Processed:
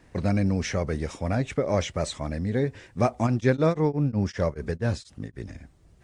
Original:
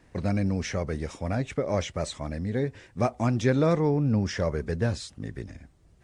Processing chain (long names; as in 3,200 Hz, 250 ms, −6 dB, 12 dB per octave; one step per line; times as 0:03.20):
0:03.26–0:05.44: tremolo along a rectified sine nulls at 6.6 Hz → 3.3 Hz
level +2.5 dB